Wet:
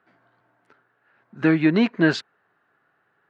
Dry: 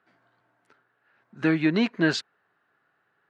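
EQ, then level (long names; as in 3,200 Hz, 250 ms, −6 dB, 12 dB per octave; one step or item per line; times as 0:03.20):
high-shelf EQ 4,200 Hz −10.5 dB
+4.5 dB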